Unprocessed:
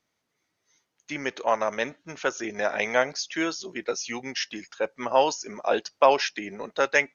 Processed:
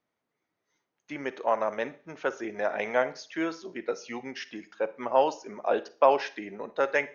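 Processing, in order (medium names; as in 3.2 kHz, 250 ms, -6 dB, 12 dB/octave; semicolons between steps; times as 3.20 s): low-pass 1.1 kHz 6 dB/octave; bass shelf 150 Hz -9.5 dB; Schroeder reverb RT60 0.42 s, DRR 15.5 dB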